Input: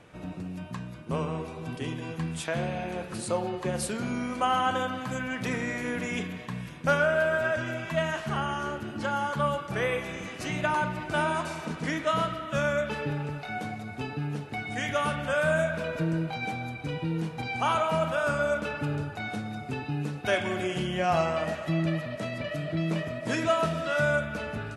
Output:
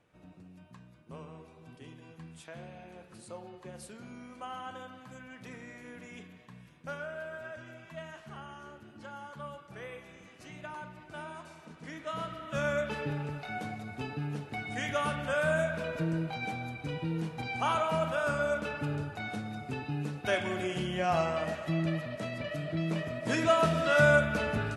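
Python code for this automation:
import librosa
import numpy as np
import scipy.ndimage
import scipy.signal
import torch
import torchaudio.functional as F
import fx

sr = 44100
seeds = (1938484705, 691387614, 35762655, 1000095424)

y = fx.gain(x, sr, db=fx.line((11.73, -16.0), (12.7, -3.5), (22.97, -3.5), (24.01, 3.0)))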